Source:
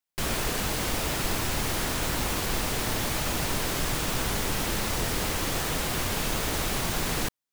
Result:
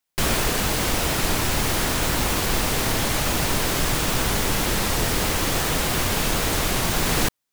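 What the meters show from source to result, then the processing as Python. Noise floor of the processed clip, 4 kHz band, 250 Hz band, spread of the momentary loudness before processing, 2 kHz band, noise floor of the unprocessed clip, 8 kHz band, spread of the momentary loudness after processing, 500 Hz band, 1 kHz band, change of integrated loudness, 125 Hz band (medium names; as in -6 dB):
-80 dBFS, +6.0 dB, +6.0 dB, 0 LU, +6.0 dB, under -85 dBFS, +6.0 dB, 0 LU, +6.0 dB, +6.0 dB, +6.0 dB, +6.0 dB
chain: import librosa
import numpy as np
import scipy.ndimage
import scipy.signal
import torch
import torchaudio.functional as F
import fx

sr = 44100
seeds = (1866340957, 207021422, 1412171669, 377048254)

y = fx.rider(x, sr, range_db=10, speed_s=0.5)
y = fx.record_warp(y, sr, rpm=33.33, depth_cents=100.0)
y = y * 10.0 ** (6.0 / 20.0)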